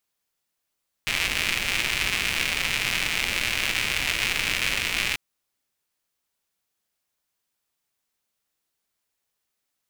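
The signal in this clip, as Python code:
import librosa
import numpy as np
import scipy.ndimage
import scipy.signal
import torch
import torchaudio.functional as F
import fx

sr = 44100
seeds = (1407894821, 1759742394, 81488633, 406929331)

y = fx.rain(sr, seeds[0], length_s=4.09, drops_per_s=210.0, hz=2400.0, bed_db=-9)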